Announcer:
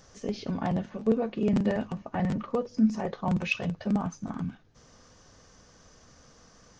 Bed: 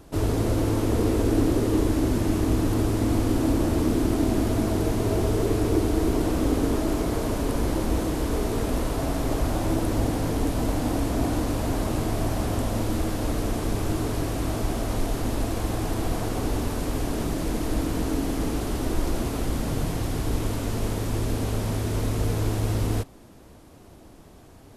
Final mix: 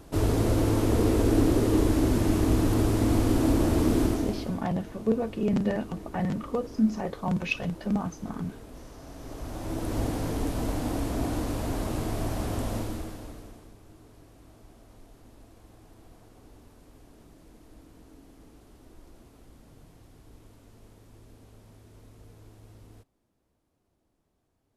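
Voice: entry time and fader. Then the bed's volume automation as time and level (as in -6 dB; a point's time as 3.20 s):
4.00 s, -0.5 dB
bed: 4.04 s -0.5 dB
4.67 s -20 dB
9.00 s -20 dB
9.98 s -4.5 dB
12.75 s -4.5 dB
13.78 s -26.5 dB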